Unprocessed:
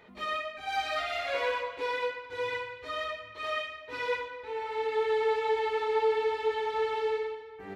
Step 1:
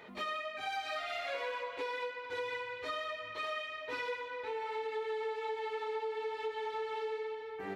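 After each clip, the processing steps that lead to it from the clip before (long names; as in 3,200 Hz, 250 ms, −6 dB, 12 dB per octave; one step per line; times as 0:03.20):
high-pass filter 180 Hz 6 dB per octave
downward compressor 6 to 1, threshold −40 dBFS, peak gain reduction 16 dB
level +4 dB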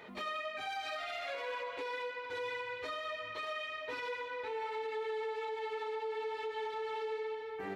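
brickwall limiter −32.5 dBFS, peak gain reduction 6 dB
level +1 dB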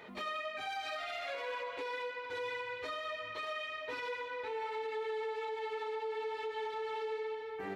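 no processing that can be heard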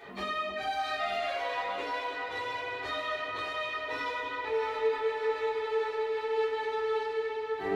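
delay that swaps between a low-pass and a high-pass 309 ms, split 940 Hz, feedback 79%, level −7 dB
rectangular room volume 160 cubic metres, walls furnished, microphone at 3.6 metres
level −2 dB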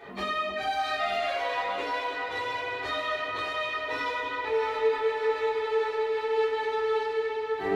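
one half of a high-frequency compander decoder only
level +3.5 dB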